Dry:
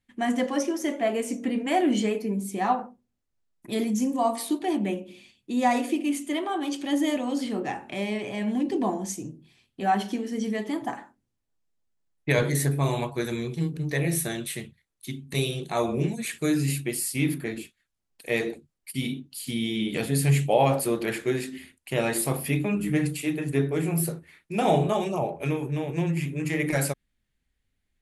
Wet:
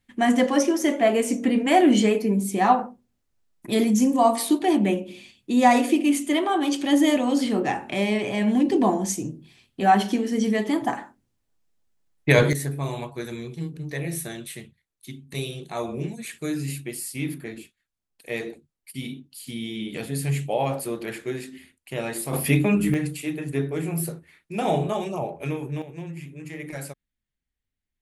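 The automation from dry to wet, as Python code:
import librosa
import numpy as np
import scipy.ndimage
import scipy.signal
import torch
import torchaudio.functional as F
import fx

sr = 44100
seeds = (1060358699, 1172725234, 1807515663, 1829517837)

y = fx.gain(x, sr, db=fx.steps((0.0, 6.0), (12.53, -4.0), (22.33, 6.0), (22.94, -1.5), (25.82, -9.5)))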